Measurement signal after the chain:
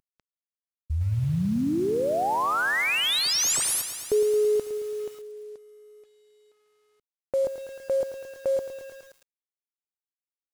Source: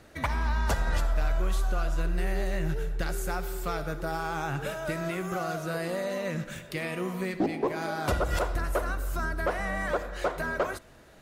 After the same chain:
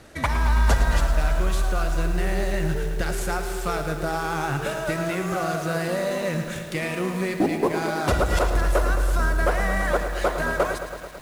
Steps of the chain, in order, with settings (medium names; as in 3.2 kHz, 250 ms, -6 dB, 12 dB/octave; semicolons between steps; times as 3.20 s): CVSD coder 64 kbps; bit-crushed delay 110 ms, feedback 80%, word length 8-bit, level -10.5 dB; trim +5.5 dB